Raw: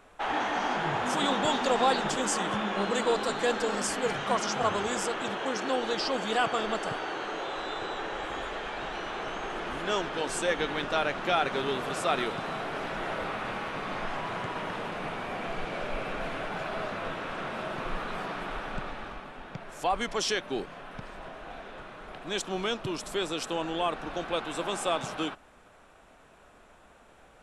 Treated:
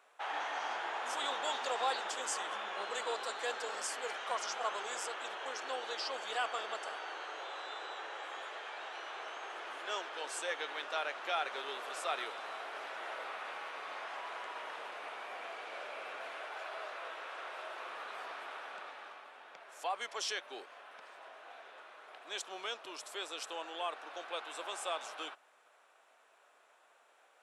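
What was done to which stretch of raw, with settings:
0:16.34–0:17.89: high-pass filter 280 Hz 24 dB per octave
whole clip: Bessel high-pass filter 650 Hz, order 4; level −7 dB

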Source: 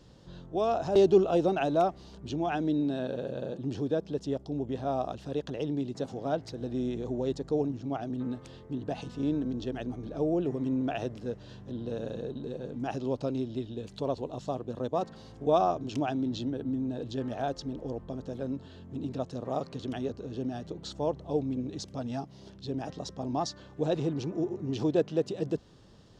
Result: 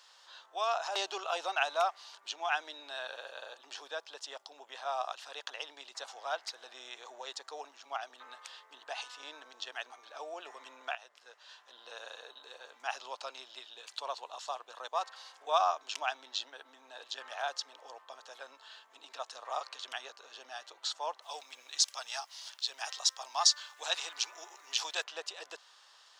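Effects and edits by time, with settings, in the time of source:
0:10.95–0:11.93: fade in, from −17 dB
0:21.22–0:25.04: spectral tilt +3.5 dB per octave
whole clip: high-pass filter 960 Hz 24 dB per octave; level +6.5 dB

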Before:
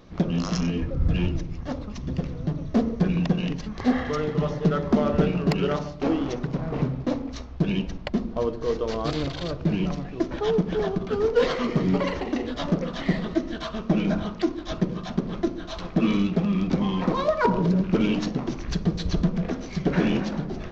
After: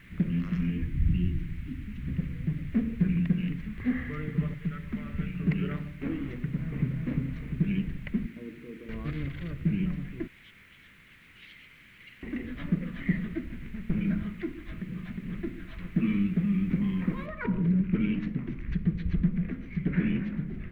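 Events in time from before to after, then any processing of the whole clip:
0:00.89–0:02.00: time-frequency box erased 420–2,500 Hz
0:04.54–0:05.40: parametric band 370 Hz −11 dB 3 octaves
0:06.55–0:06.99: delay throw 350 ms, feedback 60%, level −2.5 dB
0:08.26–0:08.89: resonant band-pass 300 Hz, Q 2
0:10.27–0:12.23: inverse Chebyshev high-pass filter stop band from 1,100 Hz, stop band 50 dB
0:13.45–0:14.01: windowed peak hold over 65 samples
0:14.68–0:15.28: downward compressor 10 to 1, threshold −27 dBFS
0:17.26: noise floor change −40 dB −52 dB
whole clip: drawn EQ curve 200 Hz 0 dB, 780 Hz −22 dB, 2,100 Hz +1 dB, 5,100 Hz −30 dB; level −2.5 dB

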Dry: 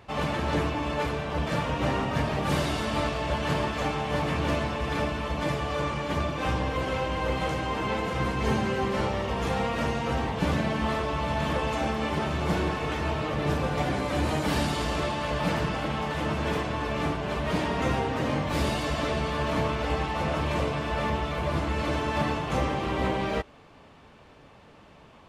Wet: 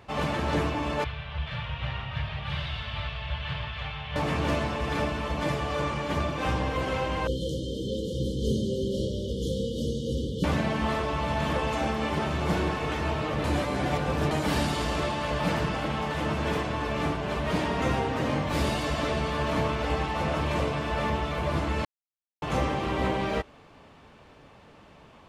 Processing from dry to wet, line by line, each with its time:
0:01.04–0:04.16: drawn EQ curve 120 Hz 0 dB, 290 Hz −27 dB, 590 Hz −14 dB, 1,200 Hz −8 dB, 3,400 Hz +1 dB, 7,400 Hz −26 dB
0:07.27–0:10.44: linear-phase brick-wall band-stop 580–2,900 Hz
0:13.44–0:14.31: reverse
0:21.85–0:22.42: silence

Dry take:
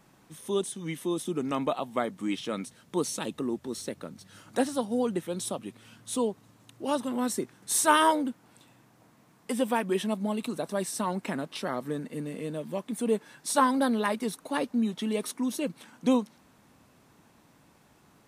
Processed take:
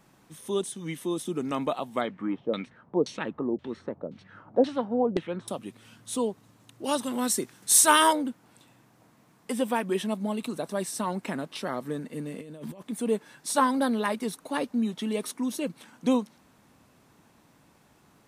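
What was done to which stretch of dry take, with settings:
0:02.01–0:05.48: auto-filter low-pass saw down 1.9 Hz 460–3,800 Hz
0:06.84–0:08.13: high-shelf EQ 2,400 Hz +8.5 dB
0:12.41–0:12.83: compressor whose output falls as the input rises −42 dBFS

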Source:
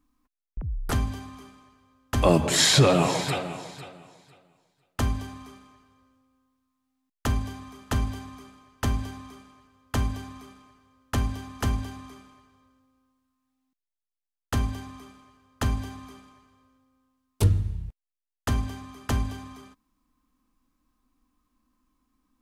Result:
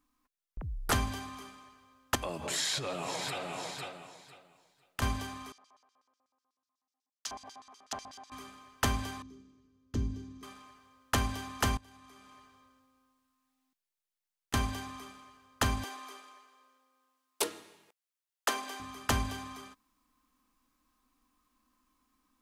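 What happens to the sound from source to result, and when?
0:02.15–0:05.02: downward compressor 5 to 1, threshold −34 dBFS
0:05.52–0:08.32: auto-filter band-pass square 8.1 Hz 740–5,400 Hz
0:09.22–0:10.43: drawn EQ curve 360 Hz 0 dB, 730 Hz −24 dB, 2,600 Hz −20 dB, 6,300 Hz −13 dB, 9,300 Hz −26 dB
0:11.77–0:14.54: downward compressor, threshold −52 dBFS
0:15.84–0:18.80: high-pass filter 340 Hz 24 dB per octave
whole clip: low-shelf EQ 390 Hz −11 dB; automatic gain control gain up to 3.5 dB

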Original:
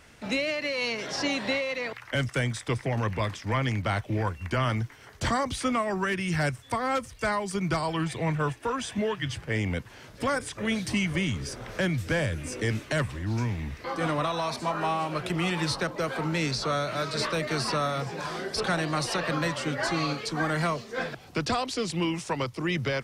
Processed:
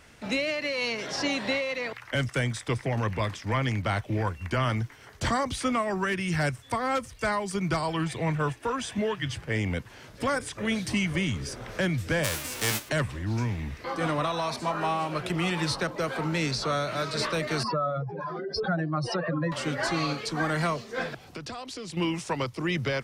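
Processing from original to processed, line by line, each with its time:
0:12.23–0:12.88: spectral envelope flattened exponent 0.3
0:17.63–0:19.52: expanding power law on the bin magnitudes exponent 2.3
0:21.25–0:21.97: downward compressor 4 to 1, threshold −36 dBFS

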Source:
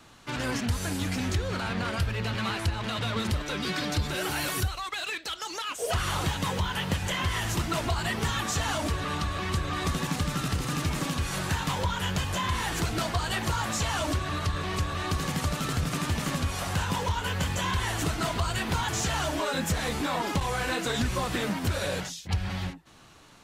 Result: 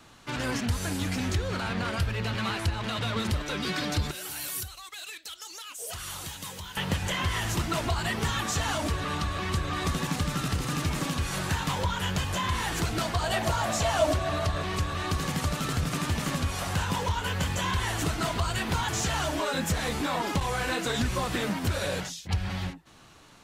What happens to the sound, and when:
0:04.11–0:06.77: first-order pre-emphasis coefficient 0.8
0:13.21–0:14.63: parametric band 660 Hz +14 dB 0.31 octaves

